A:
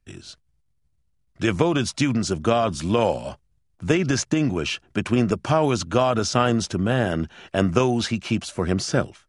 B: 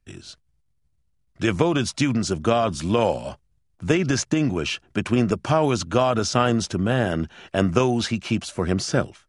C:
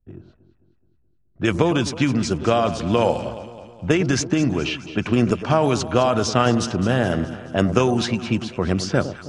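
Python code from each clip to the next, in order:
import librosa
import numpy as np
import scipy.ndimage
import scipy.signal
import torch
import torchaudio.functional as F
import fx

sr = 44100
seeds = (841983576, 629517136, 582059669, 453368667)

y1 = x
y2 = fx.env_lowpass(y1, sr, base_hz=590.0, full_db=-17.0)
y2 = fx.echo_alternate(y2, sr, ms=106, hz=1000.0, feedback_pct=73, wet_db=-11)
y2 = F.gain(torch.from_numpy(y2), 1.5).numpy()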